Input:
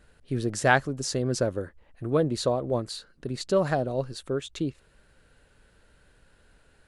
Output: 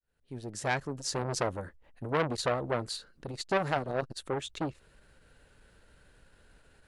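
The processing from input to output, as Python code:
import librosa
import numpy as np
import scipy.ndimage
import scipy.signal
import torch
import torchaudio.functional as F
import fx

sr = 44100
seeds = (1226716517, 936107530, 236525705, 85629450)

y = fx.fade_in_head(x, sr, length_s=1.31)
y = fx.transformer_sat(y, sr, knee_hz=2000.0)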